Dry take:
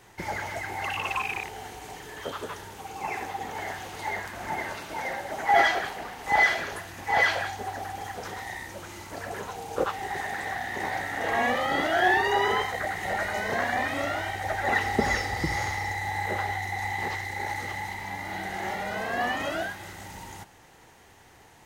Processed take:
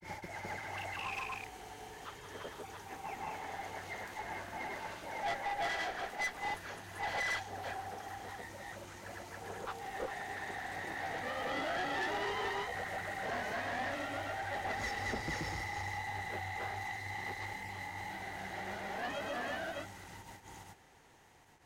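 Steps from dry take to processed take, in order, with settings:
granular cloud 181 ms, grains 20 per second, spray 311 ms, pitch spread up and down by 0 semitones
tube saturation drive 28 dB, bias 0.35
level −3.5 dB

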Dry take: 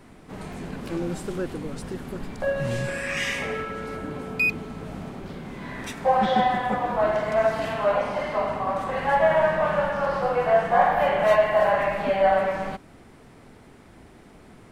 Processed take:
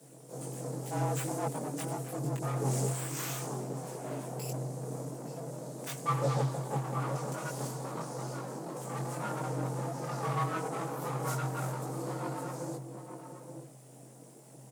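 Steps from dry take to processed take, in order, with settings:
inverse Chebyshev band-stop filter 1,000–2,200 Hz, stop band 60 dB
high shelf with overshoot 5,600 Hz +10.5 dB, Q 1.5
comb filter 5.9 ms, depth 70%
full-wave rectification
frequency shifter +130 Hz
multi-voice chorus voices 6, 0.5 Hz, delay 20 ms, depth 2.2 ms
slap from a distant wall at 150 metres, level −8 dB
highs frequency-modulated by the lows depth 0.18 ms

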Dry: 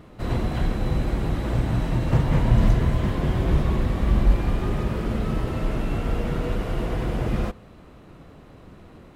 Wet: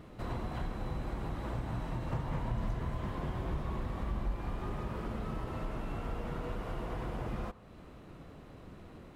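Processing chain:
dynamic equaliser 1,000 Hz, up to +7 dB, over −47 dBFS, Q 1.2
downward compressor 2 to 1, threshold −37 dBFS, peak gain reduction 14 dB
level −4.5 dB

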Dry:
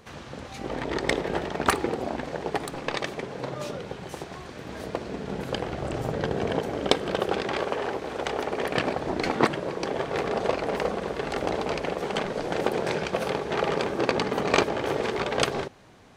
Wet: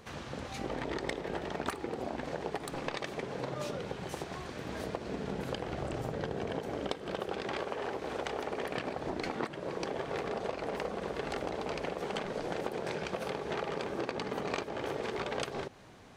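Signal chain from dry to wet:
downward compressor 6 to 1, threshold −31 dBFS, peak gain reduction 16 dB
level −1.5 dB

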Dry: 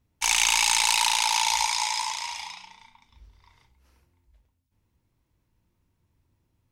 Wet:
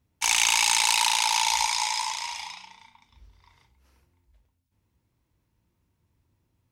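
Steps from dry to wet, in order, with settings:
high-pass filter 41 Hz

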